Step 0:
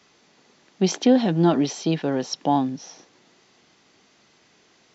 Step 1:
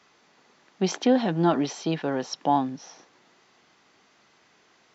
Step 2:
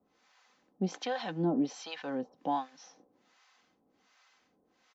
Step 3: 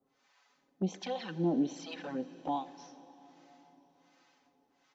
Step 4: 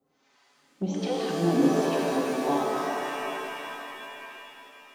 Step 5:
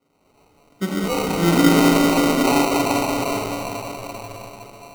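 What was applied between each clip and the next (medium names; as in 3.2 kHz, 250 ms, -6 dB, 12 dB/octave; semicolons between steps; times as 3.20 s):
peaking EQ 1.2 kHz +7 dB 2.1 oct; trim -5.5 dB
comb 3.9 ms, depth 45%; harmonic tremolo 1.3 Hz, depth 100%, crossover 670 Hz; trim -4.5 dB
touch-sensitive flanger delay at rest 7.6 ms, full sweep at -29.5 dBFS; plate-style reverb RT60 4.7 s, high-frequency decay 0.95×, DRR 14 dB
pitch-shifted reverb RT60 3.2 s, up +7 st, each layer -2 dB, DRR -2.5 dB; trim +2.5 dB
Schroeder reverb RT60 3.1 s, combs from 31 ms, DRR 1 dB; sample-and-hold 26×; trim +5.5 dB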